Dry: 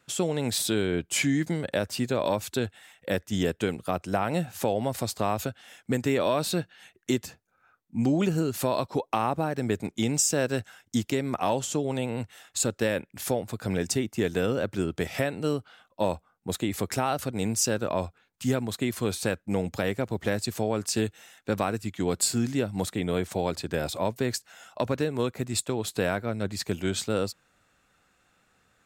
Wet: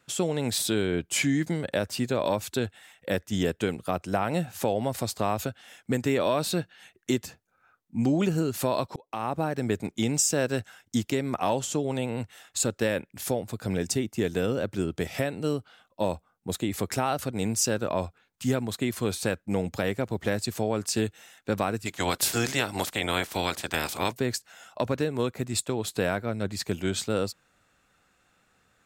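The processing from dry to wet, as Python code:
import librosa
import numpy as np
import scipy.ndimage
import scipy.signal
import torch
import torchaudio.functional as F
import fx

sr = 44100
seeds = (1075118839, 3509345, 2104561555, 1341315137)

y = fx.peak_eq(x, sr, hz=1400.0, db=-2.5, octaves=2.2, at=(13.12, 16.72))
y = fx.spec_clip(y, sr, under_db=22, at=(21.85, 24.11), fade=0.02)
y = fx.edit(y, sr, fx.fade_in_span(start_s=8.96, length_s=0.46), tone=tone)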